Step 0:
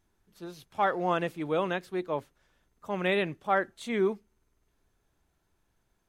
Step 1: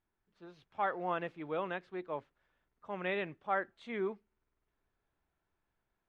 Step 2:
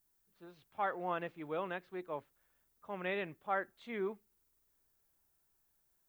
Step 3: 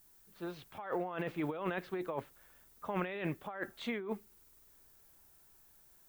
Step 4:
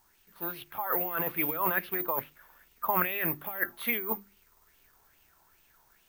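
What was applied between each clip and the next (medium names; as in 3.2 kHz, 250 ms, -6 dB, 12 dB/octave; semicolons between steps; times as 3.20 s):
low-pass 2.6 kHz 12 dB/octave; bass shelf 490 Hz -6.5 dB; level rider gain up to 3 dB; trim -8 dB
added noise violet -75 dBFS; trim -2 dB
compressor with a negative ratio -45 dBFS, ratio -1; trim +7 dB
careless resampling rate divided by 3×, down filtered, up zero stuff; hum notches 50/100/150/200/250/300/350 Hz; sweeping bell 2.4 Hz 900–2900 Hz +14 dB; trim +1 dB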